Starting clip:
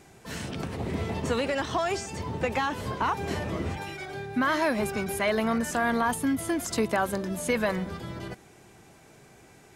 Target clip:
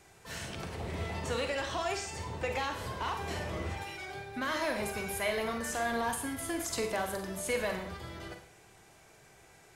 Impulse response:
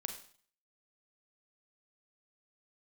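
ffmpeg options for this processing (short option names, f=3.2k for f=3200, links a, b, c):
-filter_complex "[0:a]equalizer=f=230:t=o:w=1.6:g=-9.5,acrossover=split=730|2000[a][b][c];[b]asoftclip=type=tanh:threshold=-36dB[d];[a][d][c]amix=inputs=3:normalize=0[e];[1:a]atrim=start_sample=2205,asetrate=42336,aresample=44100[f];[e][f]afir=irnorm=-1:irlink=0,volume=-1.5dB"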